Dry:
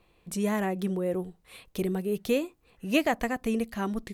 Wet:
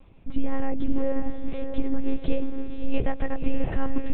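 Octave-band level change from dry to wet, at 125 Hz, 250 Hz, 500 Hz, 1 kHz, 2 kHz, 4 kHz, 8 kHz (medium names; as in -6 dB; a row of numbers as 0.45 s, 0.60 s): +1.0 dB, +0.5 dB, -2.5 dB, -3.5 dB, -6.5 dB, -9.0 dB, under -35 dB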